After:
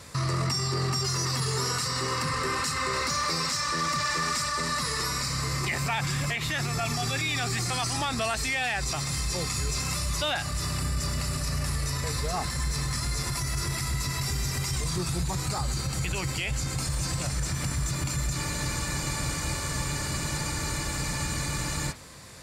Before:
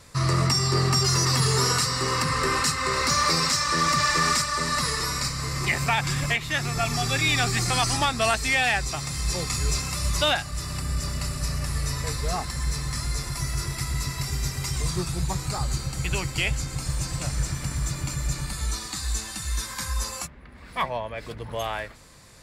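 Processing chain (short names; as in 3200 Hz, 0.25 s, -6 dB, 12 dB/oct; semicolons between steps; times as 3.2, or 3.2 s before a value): HPF 56 Hz 12 dB/oct; limiter -25 dBFS, peak gain reduction 13 dB; spectral freeze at 18.39, 3.51 s; gain +4.5 dB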